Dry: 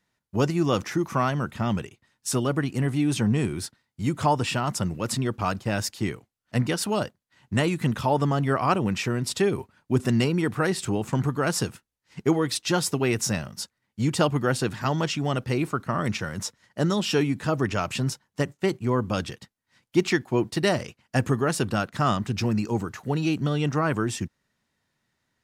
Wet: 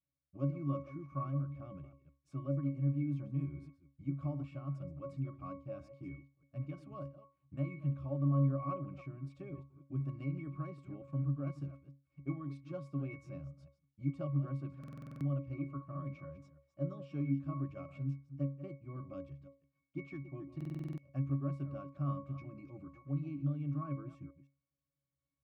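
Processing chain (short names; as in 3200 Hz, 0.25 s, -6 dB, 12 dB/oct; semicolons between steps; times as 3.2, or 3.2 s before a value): reverse delay 0.161 s, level -13 dB; octave resonator C#, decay 0.3 s; stuck buffer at 14.79/20.56, samples 2048, times 8; gain -3 dB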